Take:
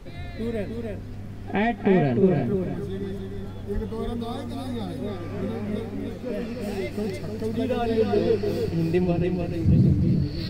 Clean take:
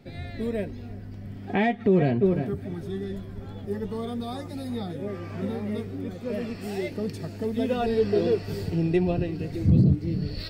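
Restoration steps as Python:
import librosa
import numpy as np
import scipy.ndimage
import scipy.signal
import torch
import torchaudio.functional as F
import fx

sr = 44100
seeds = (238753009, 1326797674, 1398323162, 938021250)

y = fx.highpass(x, sr, hz=140.0, slope=24, at=(3.74, 3.86), fade=0.02)
y = fx.noise_reduce(y, sr, print_start_s=0.99, print_end_s=1.49, reduce_db=6.0)
y = fx.fix_echo_inverse(y, sr, delay_ms=302, level_db=-4.5)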